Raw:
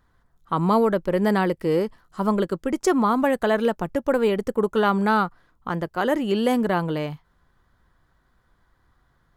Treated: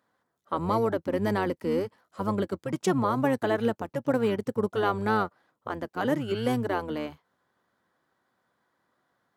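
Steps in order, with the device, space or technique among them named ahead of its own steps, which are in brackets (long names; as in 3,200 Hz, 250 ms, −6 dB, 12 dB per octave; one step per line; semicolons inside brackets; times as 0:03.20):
high-pass filter 210 Hz 24 dB per octave
octave pedal (pitch-shifted copies added −12 semitones −5 dB)
level −6 dB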